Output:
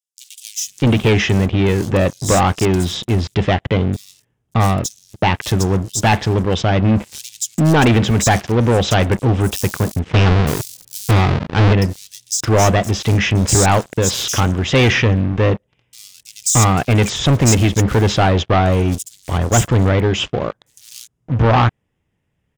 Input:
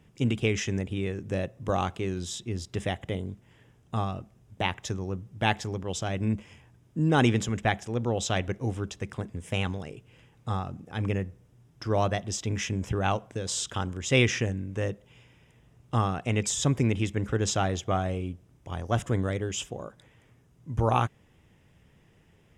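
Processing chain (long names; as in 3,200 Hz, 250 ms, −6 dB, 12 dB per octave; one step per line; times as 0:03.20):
0:09.49–0:11.11: each half-wave held at its own peak
leveller curve on the samples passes 5
multiband delay without the direct sound highs, lows 620 ms, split 4,800 Hz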